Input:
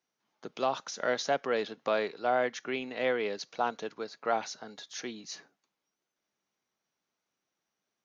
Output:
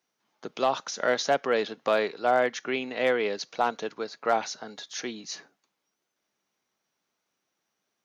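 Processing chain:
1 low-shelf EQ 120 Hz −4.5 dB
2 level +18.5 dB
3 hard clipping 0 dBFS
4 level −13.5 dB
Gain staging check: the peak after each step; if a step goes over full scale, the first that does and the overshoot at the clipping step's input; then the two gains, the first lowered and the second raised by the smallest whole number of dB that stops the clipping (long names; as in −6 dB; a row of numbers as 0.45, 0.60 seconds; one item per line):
−15.5, +3.0, 0.0, −13.5 dBFS
step 2, 3.0 dB
step 2 +15.5 dB, step 4 −10.5 dB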